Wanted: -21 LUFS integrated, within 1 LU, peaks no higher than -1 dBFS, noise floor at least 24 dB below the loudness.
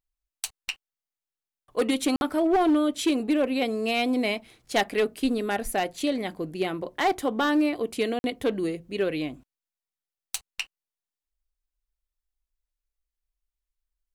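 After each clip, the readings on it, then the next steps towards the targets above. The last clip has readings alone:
clipped 0.6%; flat tops at -17.0 dBFS; dropouts 2; longest dropout 51 ms; loudness -27.0 LUFS; peak -17.0 dBFS; loudness target -21.0 LUFS
-> clip repair -17 dBFS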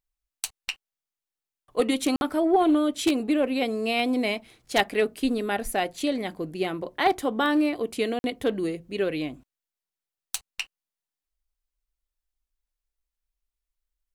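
clipped 0.0%; dropouts 2; longest dropout 51 ms
-> interpolate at 2.16/8.19, 51 ms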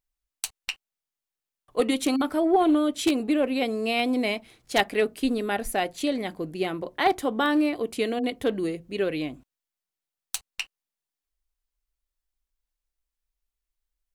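dropouts 0; loudness -26.5 LUFS; peak -8.0 dBFS; loudness target -21.0 LUFS
-> gain +5.5 dB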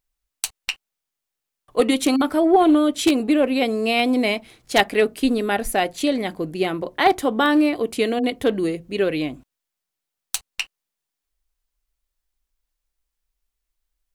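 loudness -21.0 LUFS; peak -2.5 dBFS; noise floor -84 dBFS

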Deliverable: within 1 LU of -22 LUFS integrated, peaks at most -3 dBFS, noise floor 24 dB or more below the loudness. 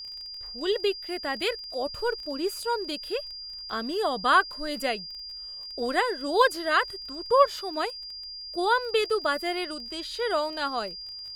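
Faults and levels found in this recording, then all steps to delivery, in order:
ticks 19/s; steady tone 4800 Hz; tone level -37 dBFS; loudness -27.5 LUFS; peak -6.5 dBFS; loudness target -22.0 LUFS
-> de-click; notch 4800 Hz, Q 30; gain +5.5 dB; limiter -3 dBFS

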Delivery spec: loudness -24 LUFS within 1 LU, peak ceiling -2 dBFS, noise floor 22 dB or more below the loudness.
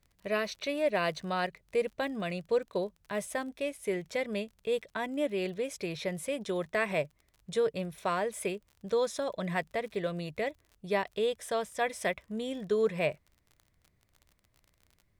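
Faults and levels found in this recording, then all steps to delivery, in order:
ticks 41/s; loudness -33.0 LUFS; peak -16.5 dBFS; loudness target -24.0 LUFS
-> de-click; gain +9 dB

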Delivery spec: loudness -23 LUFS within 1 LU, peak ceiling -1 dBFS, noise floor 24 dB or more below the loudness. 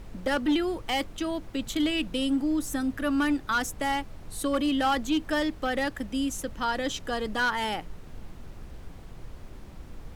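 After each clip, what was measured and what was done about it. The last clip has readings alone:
clipped 1.0%; flat tops at -19.5 dBFS; noise floor -45 dBFS; noise floor target -53 dBFS; loudness -28.5 LUFS; peak -19.5 dBFS; loudness target -23.0 LUFS
-> clip repair -19.5 dBFS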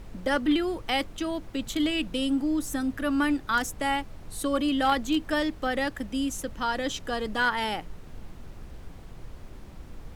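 clipped 0.0%; noise floor -45 dBFS; noise floor target -52 dBFS
-> noise print and reduce 7 dB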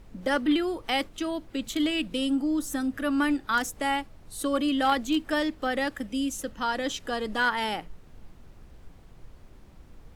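noise floor -51 dBFS; noise floor target -52 dBFS
-> noise print and reduce 6 dB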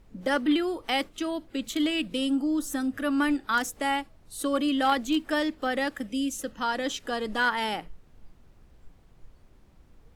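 noise floor -57 dBFS; loudness -28.0 LUFS; peak -11.0 dBFS; loudness target -23.0 LUFS
-> gain +5 dB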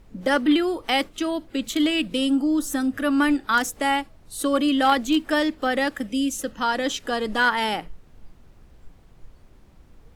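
loudness -23.0 LUFS; peak -6.0 dBFS; noise floor -52 dBFS

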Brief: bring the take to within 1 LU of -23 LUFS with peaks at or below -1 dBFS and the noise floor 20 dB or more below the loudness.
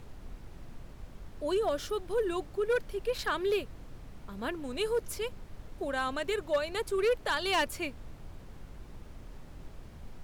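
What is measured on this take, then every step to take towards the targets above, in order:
clipped 0.6%; flat tops at -22.5 dBFS; noise floor -49 dBFS; noise floor target -53 dBFS; loudness -32.5 LUFS; peak -22.5 dBFS; loudness target -23.0 LUFS
-> clip repair -22.5 dBFS; noise print and reduce 6 dB; gain +9.5 dB

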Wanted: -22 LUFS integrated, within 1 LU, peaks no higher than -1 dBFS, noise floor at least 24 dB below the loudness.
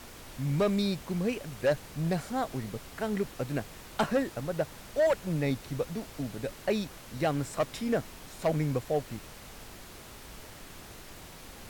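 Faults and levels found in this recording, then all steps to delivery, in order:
clipped 0.7%; flat tops at -20.5 dBFS; noise floor -48 dBFS; noise floor target -56 dBFS; loudness -32.0 LUFS; peak -20.5 dBFS; loudness target -22.0 LUFS
-> clip repair -20.5 dBFS; noise print and reduce 8 dB; gain +10 dB

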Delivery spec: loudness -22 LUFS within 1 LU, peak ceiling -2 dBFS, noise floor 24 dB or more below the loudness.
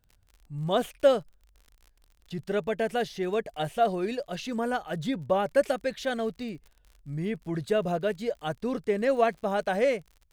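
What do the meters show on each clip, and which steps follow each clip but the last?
ticks 45/s; loudness -28.5 LUFS; peak -10.0 dBFS; loudness target -22.0 LUFS
-> de-click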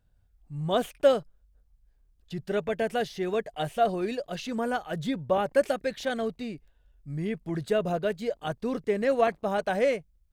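ticks 0.87/s; loudness -29.0 LUFS; peak -10.0 dBFS; loudness target -22.0 LUFS
-> gain +7 dB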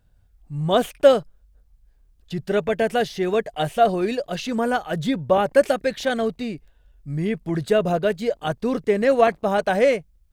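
loudness -22.0 LUFS; peak -3.0 dBFS; noise floor -59 dBFS

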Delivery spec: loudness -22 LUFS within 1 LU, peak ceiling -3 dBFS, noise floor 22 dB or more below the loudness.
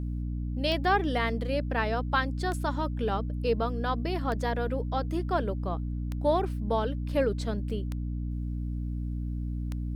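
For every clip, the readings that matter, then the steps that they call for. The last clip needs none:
clicks 6; hum 60 Hz; harmonics up to 300 Hz; hum level -30 dBFS; loudness -30.0 LUFS; peak -12.5 dBFS; loudness target -22.0 LUFS
-> de-click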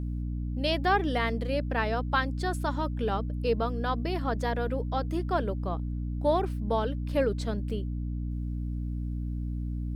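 clicks 0; hum 60 Hz; harmonics up to 300 Hz; hum level -30 dBFS
-> notches 60/120/180/240/300 Hz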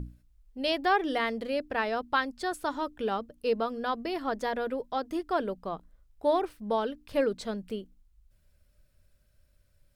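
hum none; loudness -31.0 LUFS; peak -13.5 dBFS; loudness target -22.0 LUFS
-> gain +9 dB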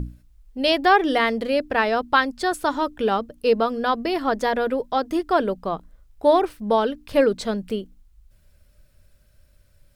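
loudness -22.0 LUFS; peak -4.5 dBFS; noise floor -58 dBFS

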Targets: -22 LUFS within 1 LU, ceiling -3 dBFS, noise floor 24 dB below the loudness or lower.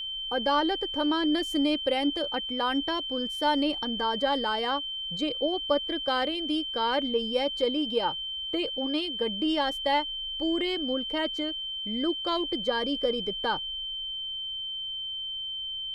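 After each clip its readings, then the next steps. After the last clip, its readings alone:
steady tone 3100 Hz; tone level -32 dBFS; loudness -28.0 LUFS; peak -13.0 dBFS; loudness target -22.0 LUFS
-> notch 3100 Hz, Q 30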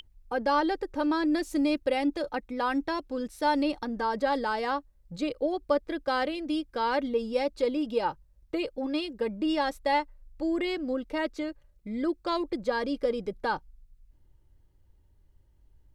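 steady tone none; loudness -29.5 LUFS; peak -13.5 dBFS; loudness target -22.0 LUFS
-> gain +7.5 dB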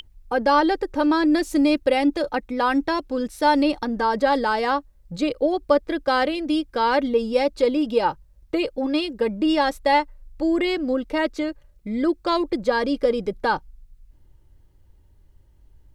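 loudness -22.0 LUFS; peak -6.0 dBFS; noise floor -55 dBFS

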